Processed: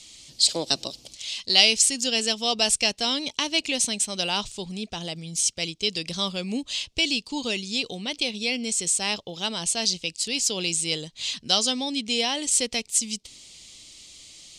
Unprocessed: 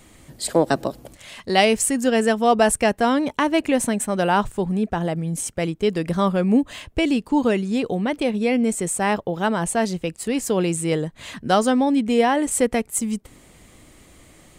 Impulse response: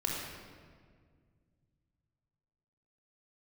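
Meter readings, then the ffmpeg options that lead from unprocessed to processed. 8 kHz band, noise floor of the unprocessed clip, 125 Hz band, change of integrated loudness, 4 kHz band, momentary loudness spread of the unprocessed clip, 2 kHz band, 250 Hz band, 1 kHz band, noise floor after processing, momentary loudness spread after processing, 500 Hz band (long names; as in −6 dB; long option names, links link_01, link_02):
+3.5 dB, −51 dBFS, −12.0 dB, −2.5 dB, +9.5 dB, 8 LU, −3.0 dB, −12.0 dB, −12.0 dB, −55 dBFS, 10 LU, −12.0 dB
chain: -af "aexciter=amount=6.8:drive=8.2:freq=2500,lowpass=frequency=5100:width_type=q:width=1.8,volume=-12dB"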